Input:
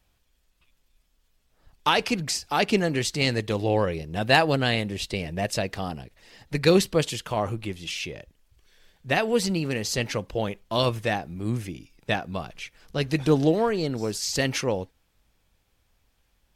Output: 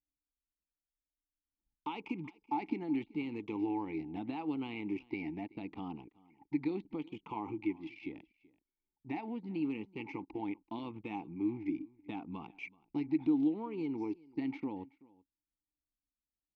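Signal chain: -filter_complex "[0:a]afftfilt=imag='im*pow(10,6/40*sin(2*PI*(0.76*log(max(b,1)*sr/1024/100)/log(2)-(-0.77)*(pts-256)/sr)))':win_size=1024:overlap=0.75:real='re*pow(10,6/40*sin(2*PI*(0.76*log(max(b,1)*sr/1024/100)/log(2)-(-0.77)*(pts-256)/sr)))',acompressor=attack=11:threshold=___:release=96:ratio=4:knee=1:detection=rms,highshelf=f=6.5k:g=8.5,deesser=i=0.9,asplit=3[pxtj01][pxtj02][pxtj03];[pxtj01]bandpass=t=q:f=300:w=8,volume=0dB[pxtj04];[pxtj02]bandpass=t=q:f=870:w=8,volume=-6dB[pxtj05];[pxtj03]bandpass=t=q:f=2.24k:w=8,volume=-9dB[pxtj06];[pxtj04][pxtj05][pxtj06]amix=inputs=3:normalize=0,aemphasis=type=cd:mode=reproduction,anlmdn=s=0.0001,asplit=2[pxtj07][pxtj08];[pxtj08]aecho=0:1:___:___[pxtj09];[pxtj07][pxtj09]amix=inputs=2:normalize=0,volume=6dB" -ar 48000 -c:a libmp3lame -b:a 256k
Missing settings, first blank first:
-29dB, 380, 0.0668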